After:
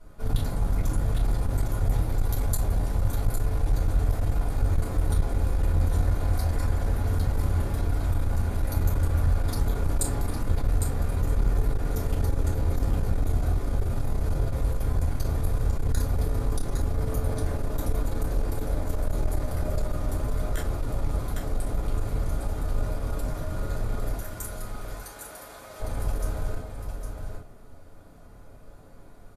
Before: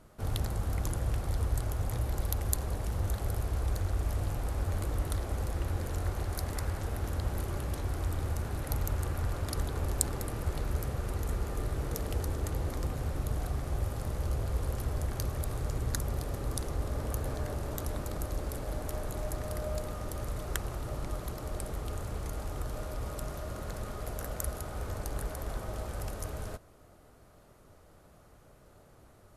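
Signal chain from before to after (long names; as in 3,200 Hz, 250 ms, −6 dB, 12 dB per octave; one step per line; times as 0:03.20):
0:24.15–0:25.80: high-pass filter 1,500 Hz 6 dB per octave
on a send: single-tap delay 807 ms −7 dB
on the sum: rectangular room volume 130 cubic metres, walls furnished, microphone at 4.7 metres
saturating transformer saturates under 57 Hz
level −7 dB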